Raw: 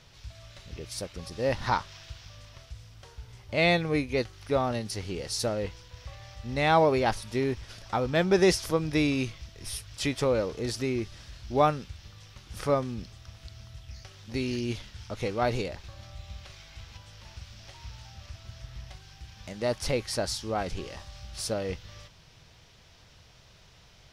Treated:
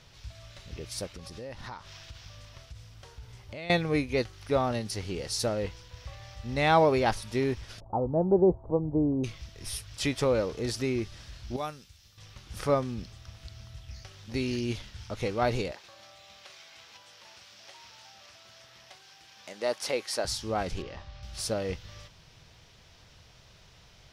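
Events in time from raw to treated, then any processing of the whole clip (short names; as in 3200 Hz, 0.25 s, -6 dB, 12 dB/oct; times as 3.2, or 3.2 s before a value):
1.13–3.7 compressor 5:1, threshold -39 dBFS
7.8–9.24 elliptic low-pass 910 Hz, stop band 60 dB
11.56–12.18 pre-emphasis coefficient 0.8
15.72–20.25 HPF 370 Hz
20.82–21.23 air absorption 170 m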